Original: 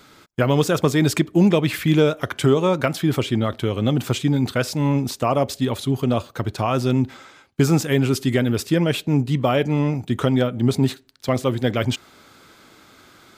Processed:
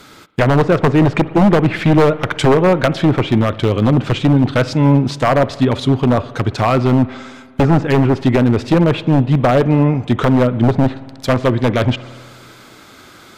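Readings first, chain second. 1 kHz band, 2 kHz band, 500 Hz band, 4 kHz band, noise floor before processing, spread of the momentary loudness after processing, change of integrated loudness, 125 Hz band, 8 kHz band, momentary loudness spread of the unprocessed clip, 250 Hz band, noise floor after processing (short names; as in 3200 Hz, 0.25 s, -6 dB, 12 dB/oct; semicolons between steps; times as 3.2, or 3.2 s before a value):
+8.5 dB, +6.0 dB, +6.0 dB, +2.0 dB, -51 dBFS, 5 LU, +6.0 dB, +6.5 dB, n/a, 6 LU, +6.0 dB, -42 dBFS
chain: treble ducked by the level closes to 1400 Hz, closed at -14.5 dBFS; wavefolder -13 dBFS; spring tank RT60 1.9 s, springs 56 ms, chirp 80 ms, DRR 16.5 dB; gain +8 dB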